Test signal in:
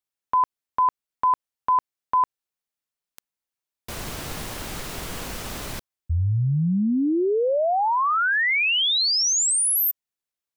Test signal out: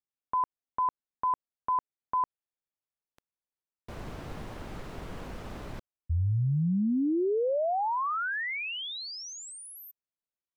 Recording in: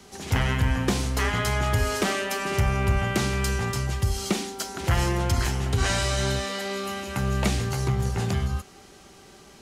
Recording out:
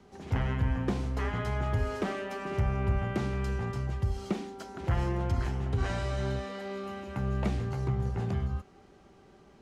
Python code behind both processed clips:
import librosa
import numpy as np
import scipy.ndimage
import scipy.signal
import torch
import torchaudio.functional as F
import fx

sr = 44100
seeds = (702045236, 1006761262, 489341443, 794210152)

y = fx.lowpass(x, sr, hz=1000.0, slope=6)
y = y * librosa.db_to_amplitude(-5.0)